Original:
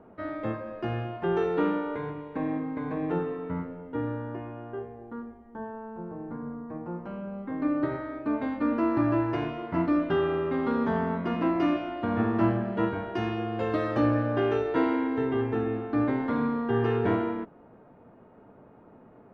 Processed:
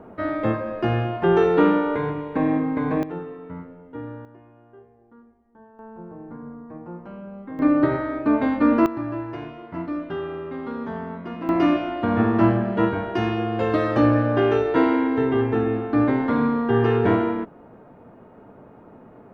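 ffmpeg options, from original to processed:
-af "asetnsamples=n=441:p=0,asendcmd='3.03 volume volume -3.5dB;4.25 volume volume -12dB;5.79 volume volume -1dB;7.59 volume volume 9dB;8.86 volume volume -4dB;11.49 volume volume 6.5dB',volume=9dB"

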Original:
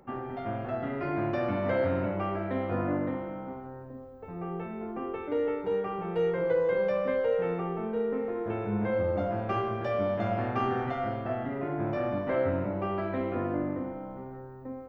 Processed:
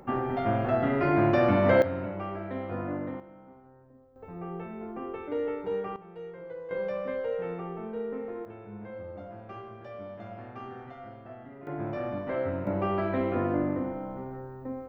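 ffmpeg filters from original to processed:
-af "asetnsamples=n=441:p=0,asendcmd='1.82 volume volume -4dB;3.2 volume volume -13dB;4.16 volume volume -2dB;5.96 volume volume -14.5dB;6.71 volume volume -4.5dB;8.45 volume volume -13dB;11.67 volume volume -3dB;12.67 volume volume 3dB',volume=7dB"

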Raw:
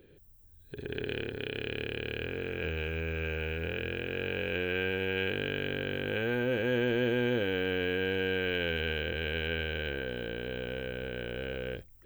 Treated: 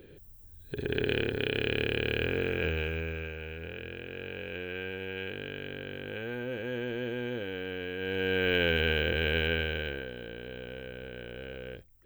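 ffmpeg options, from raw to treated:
-af "volume=17dB,afade=t=out:st=2.39:d=0.94:silence=0.251189,afade=t=in:st=7.96:d=0.6:silence=0.281838,afade=t=out:st=9.38:d=0.74:silence=0.316228"

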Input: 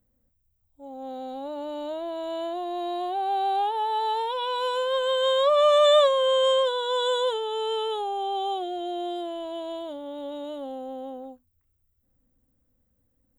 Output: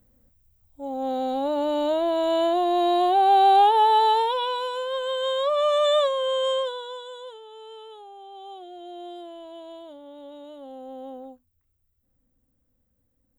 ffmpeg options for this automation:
-af "volume=23dB,afade=t=out:st=3.85:d=0.83:silence=0.251189,afade=t=out:st=6.57:d=0.47:silence=0.251189,afade=t=in:st=8.31:d=0.75:silence=0.421697,afade=t=in:st=10.57:d=0.57:silence=0.473151"

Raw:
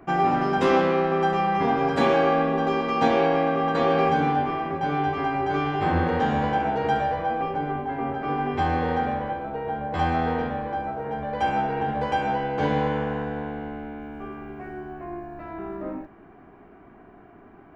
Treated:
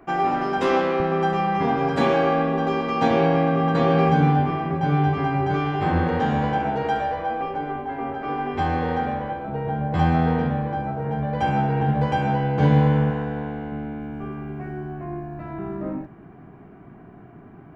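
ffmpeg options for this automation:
-af "asetnsamples=n=441:p=0,asendcmd='1 equalizer g 4.5;3.11 equalizer g 12.5;5.54 equalizer g 5;6.83 equalizer g -4.5;8.56 equalizer g 3;9.48 equalizer g 14;13.1 equalizer g 6.5;13.72 equalizer g 14',equalizer=f=140:t=o:w=1.2:g=-5.5"

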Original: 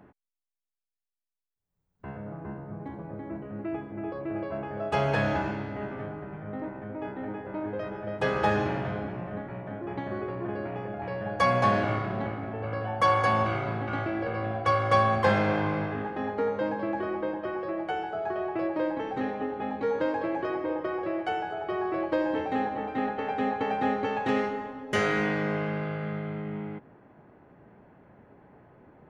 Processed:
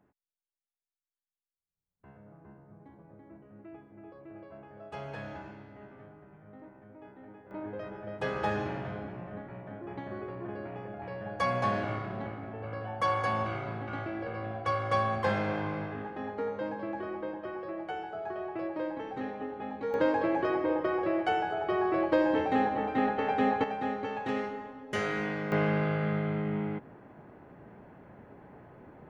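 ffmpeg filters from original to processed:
-af "asetnsamples=n=441:p=0,asendcmd='7.51 volume volume -6dB;19.94 volume volume 1.5dB;23.64 volume volume -6dB;25.52 volume volume 3dB',volume=-15dB"

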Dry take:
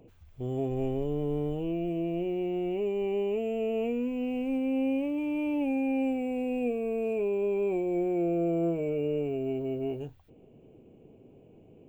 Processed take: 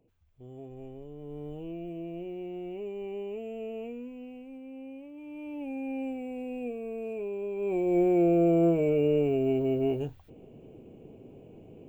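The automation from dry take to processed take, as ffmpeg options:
-af "volume=13dB,afade=t=in:st=1.17:d=0.4:silence=0.473151,afade=t=out:st=3.66:d=0.84:silence=0.398107,afade=t=in:st=5.12:d=0.8:silence=0.334965,afade=t=in:st=7.56:d=0.44:silence=0.281838"

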